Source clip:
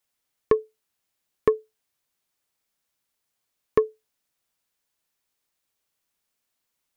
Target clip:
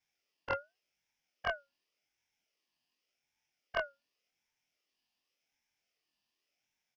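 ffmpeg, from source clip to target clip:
-af "afftfilt=real='re':imag='-im':win_size=2048:overlap=0.75,firequalizer=gain_entry='entry(110,0);entry(160,-10);entry(360,-20);entry(740,6);entry(1200,-18);entry(1700,2);entry(2500,-11);entry(3800,8);entry(6500,-14)':delay=0.05:min_phase=1,aeval=exprs='val(0)*sin(2*PI*1300*n/s+1300*0.25/0.88*sin(2*PI*0.88*n/s))':c=same,volume=5.5dB"

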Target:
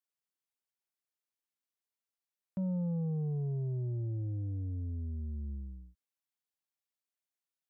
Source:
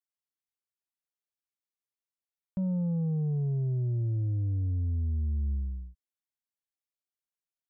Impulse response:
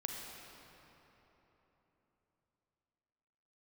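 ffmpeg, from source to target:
-af "highpass=f=180:p=1,volume=-1dB"

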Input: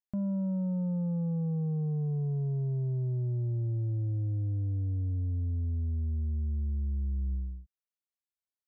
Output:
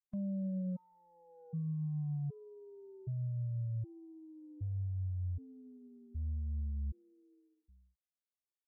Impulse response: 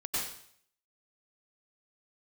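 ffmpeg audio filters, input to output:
-af "aecho=1:1:293:0.0794,afftfilt=real='re*gt(sin(2*PI*0.65*pts/sr)*(1-2*mod(floor(b*sr/1024/250),2)),0)':imag='im*gt(sin(2*PI*0.65*pts/sr)*(1-2*mod(floor(b*sr/1024/250),2)),0)':win_size=1024:overlap=0.75,volume=-6dB"

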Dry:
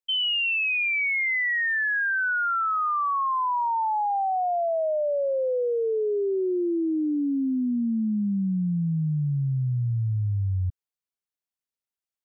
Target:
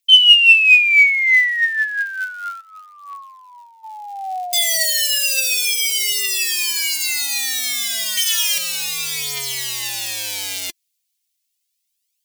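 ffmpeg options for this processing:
-filter_complex "[0:a]asettb=1/sr,asplit=3[a][b][c];[a]atrim=end=8.174[d];[b]atrim=start=8.17:end=8.58,asetpts=PTS-STARTPTS,afade=t=in:d=0.004:c=qsin,afade=t=out:st=0.406:d=0.004:c=qsin,lowshelf=f=360:g=8[e];[c]atrim=start=8.576[f];[d][e]acrossfade=d=0.004:c1=hsin:c2=qsin[g];[g][f]acrossfade=d=0.004:c1=qsin:c2=hsin,acrossover=split=630[h][i];[h]aeval=exprs='(mod(31.6*val(0)+1,2)-1)/31.6':c=same[j];[j][i]amix=inputs=2:normalize=0,asplit=3[k][l][m];[k]afade=t=out:st=2.6:d=0.02[n];[l]asplit=3[o][p][q];[o]bandpass=f=730:t=q:w=8,volume=0dB[r];[p]bandpass=f=1.09k:t=q:w=8,volume=-6dB[s];[q]bandpass=f=2.44k:t=q:w=8,volume=-9dB[t];[r][s][t]amix=inputs=3:normalize=0,afade=t=in:st=2.6:d=0.02,afade=t=out:st=3.83:d=0.02[u];[m]afade=t=in:st=3.83:d=0.02[v];[n][u][v]amix=inputs=3:normalize=0,aphaser=in_gain=1:out_gain=1:delay=3.4:decay=0.51:speed=0.32:type=triangular,aexciter=amount=10.5:drive=5.2:freq=2k,volume=-5.5dB"

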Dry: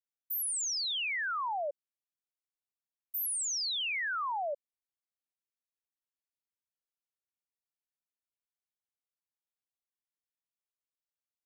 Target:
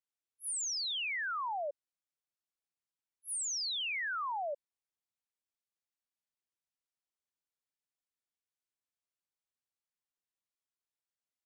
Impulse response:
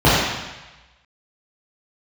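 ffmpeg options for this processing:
-af "aresample=22050,aresample=44100,volume=-2.5dB"

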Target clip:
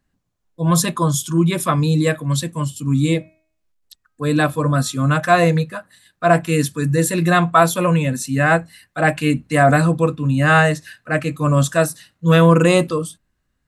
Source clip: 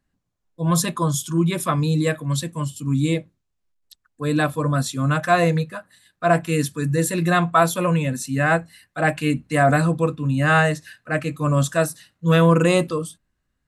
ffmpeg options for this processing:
-filter_complex "[0:a]asettb=1/sr,asplit=3[a][b][c];[a]atrim=end=2.834[d];[b]atrim=start=2.83:end=5.07,asetpts=PTS-STARTPTS,afade=t=in:d=0.004:c=qsin,afade=t=out:st=2.236:d=0.004:c=qsin,bandreject=f=316.1:t=h:w=4,bandreject=f=632.2:t=h:w=4,bandreject=f=948.3:t=h:w=4,bandreject=f=1.2644k:t=h:w=4,bandreject=f=1.5805k:t=h:w=4,bandreject=f=1.8966k:t=h:w=4,bandreject=f=2.2127k:t=h:w=4,bandreject=f=2.5288k:t=h:w=4[e];[c]atrim=start=5.066[f];[d][e]acrossfade=d=0.004:c1=hsin:c2=qsin[g];[g][f]acrossfade=d=0.004:c1=qsin:c2=hsin,volume=3.5dB"

